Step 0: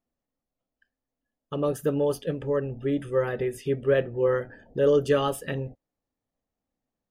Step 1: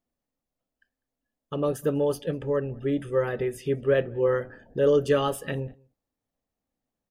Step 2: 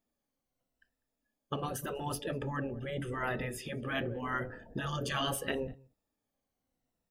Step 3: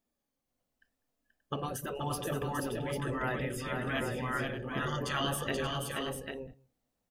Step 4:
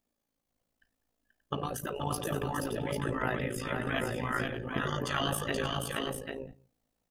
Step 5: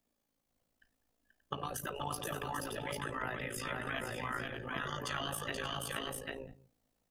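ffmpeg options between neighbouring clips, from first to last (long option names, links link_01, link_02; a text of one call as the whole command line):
ffmpeg -i in.wav -filter_complex "[0:a]asplit=2[link_01][link_02];[link_02]adelay=198.3,volume=-28dB,highshelf=frequency=4000:gain=-4.46[link_03];[link_01][link_03]amix=inputs=2:normalize=0" out.wav
ffmpeg -i in.wav -af "afftfilt=real='re*pow(10,7/40*sin(2*PI*(2*log(max(b,1)*sr/1024/100)/log(2)-(-0.82)*(pts-256)/sr)))':imag='im*pow(10,7/40*sin(2*PI*(2*log(max(b,1)*sr/1024/100)/log(2)-(-0.82)*(pts-256)/sr)))':win_size=1024:overlap=0.75,afftfilt=real='re*lt(hypot(re,im),0.2)':imag='im*lt(hypot(re,im),0.2)':win_size=1024:overlap=0.75" out.wav
ffmpeg -i in.wav -af "aecho=1:1:481|580|795:0.596|0.251|0.473" out.wav
ffmpeg -i in.wav -af "tremolo=f=55:d=0.71,volume=4.5dB" out.wav
ffmpeg -i in.wav -filter_complex "[0:a]acrossover=split=99|700[link_01][link_02][link_03];[link_01]acompressor=threshold=-54dB:ratio=4[link_04];[link_02]acompressor=threshold=-46dB:ratio=4[link_05];[link_03]acompressor=threshold=-38dB:ratio=4[link_06];[link_04][link_05][link_06]amix=inputs=3:normalize=0,volume=1dB" out.wav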